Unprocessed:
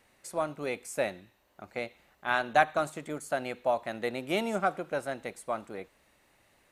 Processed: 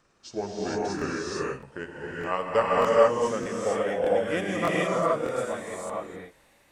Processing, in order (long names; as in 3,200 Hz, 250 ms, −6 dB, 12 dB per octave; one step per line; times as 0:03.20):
pitch glide at a constant tempo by −8 semitones ending unshifted
reverb whose tail is shaped and stops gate 490 ms rising, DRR −6 dB
regular buffer underruns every 0.61 s, samples 1,024, repeat, from 0:00.97